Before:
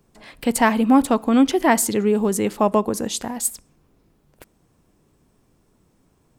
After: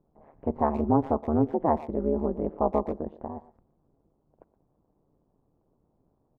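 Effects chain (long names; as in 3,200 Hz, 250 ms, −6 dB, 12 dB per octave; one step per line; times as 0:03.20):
transistor ladder low-pass 970 Hz, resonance 35%
amplitude modulation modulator 150 Hz, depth 95%
far-end echo of a speakerphone 120 ms, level −16 dB
level +2.5 dB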